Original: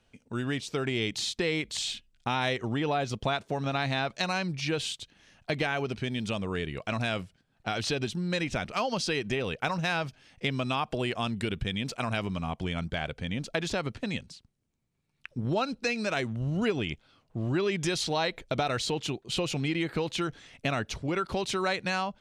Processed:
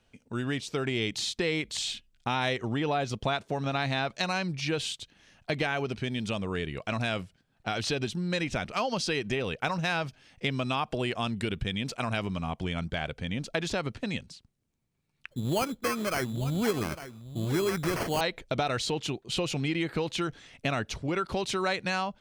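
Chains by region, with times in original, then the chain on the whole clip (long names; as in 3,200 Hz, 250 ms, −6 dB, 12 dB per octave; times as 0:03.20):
0:15.30–0:18.21: single-tap delay 852 ms −13 dB + sample-rate reduction 3,700 Hz
whole clip: no processing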